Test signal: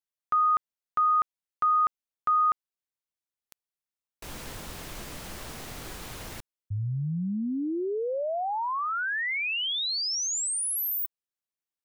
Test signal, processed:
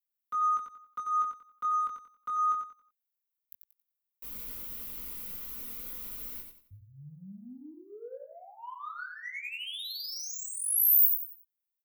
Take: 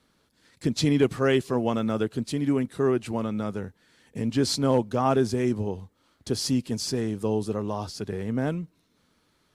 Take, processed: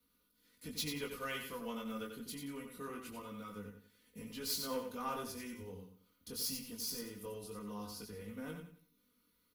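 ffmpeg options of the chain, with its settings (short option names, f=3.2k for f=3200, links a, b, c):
-filter_complex "[0:a]equalizer=f=750:w=3.2:g=-13,bandreject=f=1.7k:w=10,aecho=1:1:4.1:0.78,acrossover=split=110|570|4600[a][b][c][d];[b]acompressor=threshold=-36dB:ratio=5:attack=4.5:release=138:knee=1[e];[a][e][c][d]amix=inputs=4:normalize=0,aeval=exprs='0.2*(cos(1*acos(clip(val(0)/0.2,-1,1)))-cos(1*PI/2))+0.00158*(cos(3*acos(clip(val(0)/0.2,-1,1)))-cos(3*PI/2))+0.00501*(cos(7*acos(clip(val(0)/0.2,-1,1)))-cos(7*PI/2))':c=same,aecho=1:1:91|182|273|364:0.501|0.155|0.0482|0.0149,flanger=delay=19:depth=3.1:speed=0.24,aexciter=amount=9.1:drive=5.2:freq=11k,volume=-9dB"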